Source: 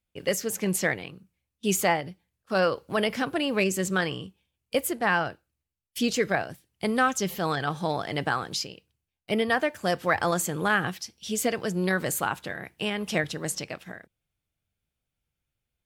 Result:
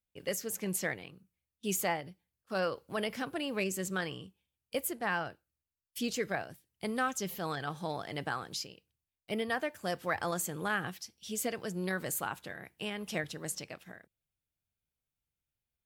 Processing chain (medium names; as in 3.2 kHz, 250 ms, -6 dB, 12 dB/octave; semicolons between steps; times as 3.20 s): treble shelf 11 kHz +8.5 dB; trim -9 dB